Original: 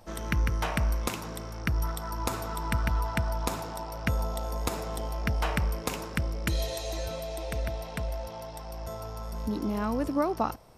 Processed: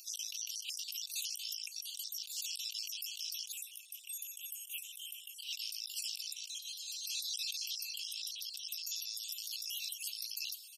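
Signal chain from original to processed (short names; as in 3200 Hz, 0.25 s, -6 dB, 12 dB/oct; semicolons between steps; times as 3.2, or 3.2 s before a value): random spectral dropouts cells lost 39%; steep high-pass 2700 Hz 96 dB/oct; high shelf 4100 Hz +3 dB; negative-ratio compressor -51 dBFS, ratio -1; limiter -38.5 dBFS, peak gain reduction 7.5 dB; 3.52–5.39 Butterworth band-stop 4700 Hz, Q 1.1; echo 0.714 s -22.5 dB; gain +10.5 dB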